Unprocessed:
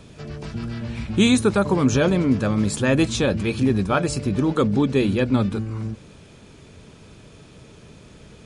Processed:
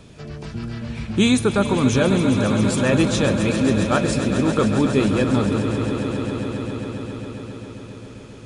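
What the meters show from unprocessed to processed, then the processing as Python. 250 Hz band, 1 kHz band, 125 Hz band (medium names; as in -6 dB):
+1.5 dB, +2.0 dB, +1.5 dB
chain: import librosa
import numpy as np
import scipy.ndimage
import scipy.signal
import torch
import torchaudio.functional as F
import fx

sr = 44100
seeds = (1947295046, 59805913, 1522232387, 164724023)

y = fx.echo_swell(x, sr, ms=135, loudest=5, wet_db=-12)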